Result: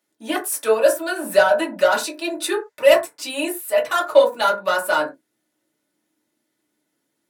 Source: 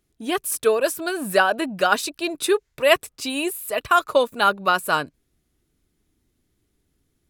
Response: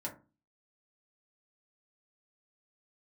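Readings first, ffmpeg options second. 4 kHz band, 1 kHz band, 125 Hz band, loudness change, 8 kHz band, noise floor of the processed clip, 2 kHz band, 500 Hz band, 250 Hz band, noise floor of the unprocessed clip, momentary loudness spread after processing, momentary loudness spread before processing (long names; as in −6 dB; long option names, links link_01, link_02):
−0.5 dB, −1.0 dB, can't be measured, +2.0 dB, +1.0 dB, −75 dBFS, 0.0 dB, +4.5 dB, −0.5 dB, −72 dBFS, 10 LU, 8 LU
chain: -filter_complex "[0:a]highpass=430,acrossover=split=700|3000[link_01][link_02][link_03];[link_02]asoftclip=type=tanh:threshold=-22dB[link_04];[link_01][link_04][link_03]amix=inputs=3:normalize=0[link_05];[1:a]atrim=start_sample=2205,afade=type=out:start_time=0.17:duration=0.01,atrim=end_sample=7938[link_06];[link_05][link_06]afir=irnorm=-1:irlink=0,volume=3.5dB"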